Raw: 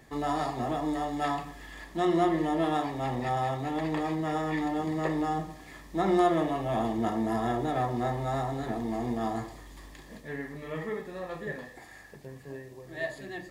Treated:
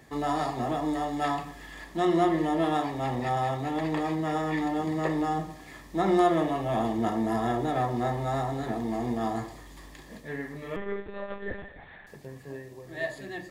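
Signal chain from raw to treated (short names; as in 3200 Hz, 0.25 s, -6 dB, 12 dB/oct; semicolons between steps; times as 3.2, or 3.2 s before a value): HPF 45 Hz; 10.76–12.07 monotone LPC vocoder at 8 kHz 200 Hz; gain +1.5 dB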